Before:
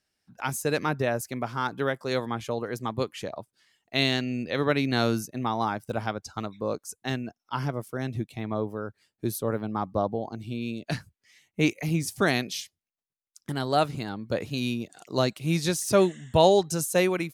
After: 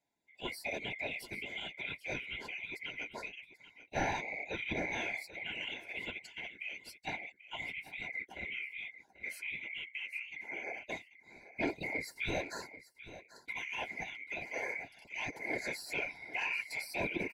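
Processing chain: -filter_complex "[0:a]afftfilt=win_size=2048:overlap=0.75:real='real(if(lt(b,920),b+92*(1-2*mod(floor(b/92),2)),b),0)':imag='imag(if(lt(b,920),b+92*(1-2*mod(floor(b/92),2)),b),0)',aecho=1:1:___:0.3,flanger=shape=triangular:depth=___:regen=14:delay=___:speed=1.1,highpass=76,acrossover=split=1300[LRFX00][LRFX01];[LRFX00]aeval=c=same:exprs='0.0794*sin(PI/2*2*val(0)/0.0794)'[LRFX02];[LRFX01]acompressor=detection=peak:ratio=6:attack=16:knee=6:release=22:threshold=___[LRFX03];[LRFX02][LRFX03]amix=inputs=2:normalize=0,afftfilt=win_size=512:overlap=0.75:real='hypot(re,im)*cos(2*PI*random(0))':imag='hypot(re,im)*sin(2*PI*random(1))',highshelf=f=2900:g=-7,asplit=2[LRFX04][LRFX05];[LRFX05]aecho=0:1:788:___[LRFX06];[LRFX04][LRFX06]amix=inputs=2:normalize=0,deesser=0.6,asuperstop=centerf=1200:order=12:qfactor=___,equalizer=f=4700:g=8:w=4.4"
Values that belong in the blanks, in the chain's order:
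2.9, 7.1, 5.1, -38dB, 0.178, 3.7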